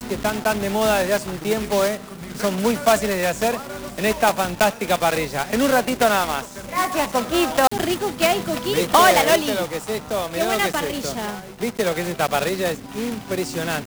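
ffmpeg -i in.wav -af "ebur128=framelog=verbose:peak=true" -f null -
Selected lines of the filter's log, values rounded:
Integrated loudness:
  I:         -20.8 LUFS
  Threshold: -30.9 LUFS
Loudness range:
  LRA:         4.7 LU
  Threshold: -40.6 LUFS
  LRA low:   -23.4 LUFS
  LRA high:  -18.7 LUFS
True peak:
  Peak:       -2.1 dBFS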